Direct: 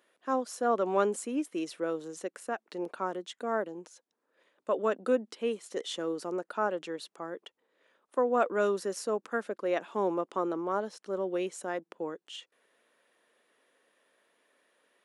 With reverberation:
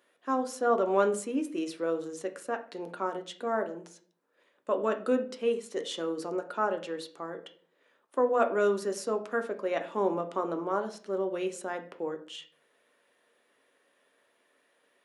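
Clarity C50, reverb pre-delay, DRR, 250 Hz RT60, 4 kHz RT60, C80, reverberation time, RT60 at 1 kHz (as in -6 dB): 13.0 dB, 7 ms, 5.5 dB, 0.60 s, 0.35 s, 17.5 dB, 0.50 s, 0.40 s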